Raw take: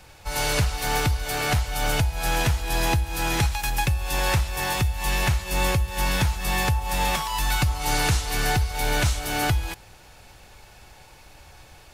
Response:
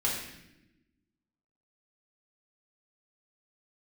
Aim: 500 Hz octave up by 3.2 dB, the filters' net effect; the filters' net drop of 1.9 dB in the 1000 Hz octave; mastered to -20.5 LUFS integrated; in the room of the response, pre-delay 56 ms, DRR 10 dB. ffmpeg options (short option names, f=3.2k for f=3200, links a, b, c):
-filter_complex "[0:a]equalizer=f=500:t=o:g=5,equalizer=f=1k:t=o:g=-4.5,asplit=2[a][b];[1:a]atrim=start_sample=2205,adelay=56[c];[b][c]afir=irnorm=-1:irlink=0,volume=-18dB[d];[a][d]amix=inputs=2:normalize=0,volume=3.5dB"